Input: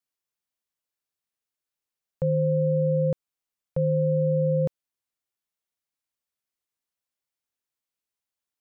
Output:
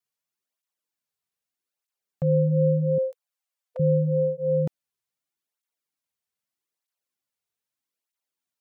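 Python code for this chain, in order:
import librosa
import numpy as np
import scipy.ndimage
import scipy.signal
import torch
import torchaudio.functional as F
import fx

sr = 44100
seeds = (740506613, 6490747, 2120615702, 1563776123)

y = fx.brickwall_highpass(x, sr, low_hz=480.0, at=(2.98, 3.8))
y = fx.flanger_cancel(y, sr, hz=0.8, depth_ms=3.8)
y = y * 10.0 ** (3.5 / 20.0)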